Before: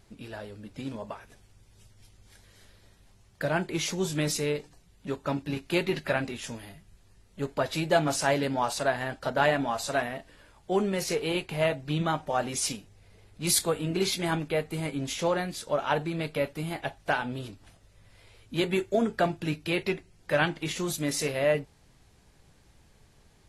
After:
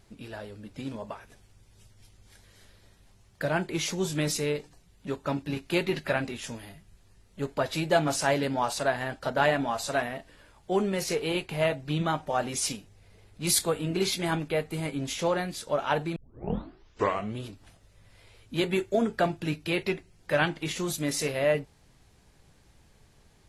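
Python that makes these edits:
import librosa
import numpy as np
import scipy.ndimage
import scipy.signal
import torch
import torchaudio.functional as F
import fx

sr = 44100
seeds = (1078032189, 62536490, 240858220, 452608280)

y = fx.edit(x, sr, fx.tape_start(start_s=16.16, length_s=1.3), tone=tone)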